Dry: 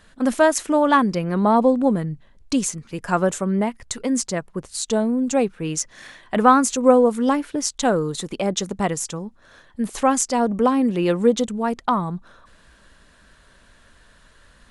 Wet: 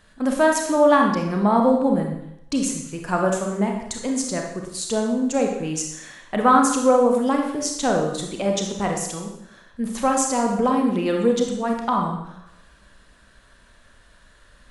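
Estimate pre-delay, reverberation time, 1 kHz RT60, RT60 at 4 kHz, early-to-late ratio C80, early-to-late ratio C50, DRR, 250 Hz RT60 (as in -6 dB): 29 ms, 0.80 s, 0.80 s, 0.75 s, 6.5 dB, 4.0 dB, 1.5 dB, 0.75 s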